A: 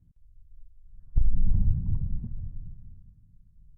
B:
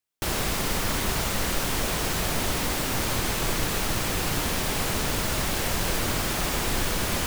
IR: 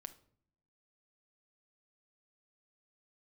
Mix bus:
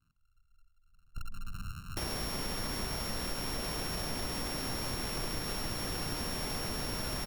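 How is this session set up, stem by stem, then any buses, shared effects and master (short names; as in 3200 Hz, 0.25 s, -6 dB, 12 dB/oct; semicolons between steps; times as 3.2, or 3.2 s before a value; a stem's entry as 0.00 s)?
-8.5 dB, 0.00 s, no send, sample sorter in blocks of 32 samples; low shelf 170 Hz -8.5 dB; de-hum 45.03 Hz, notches 24
-4.0 dB, 1.75 s, no send, sample sorter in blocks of 8 samples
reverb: off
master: bell 240 Hz +2.5 dB 0.3 oct; compressor 2.5:1, threshold -35 dBFS, peak gain reduction 7.5 dB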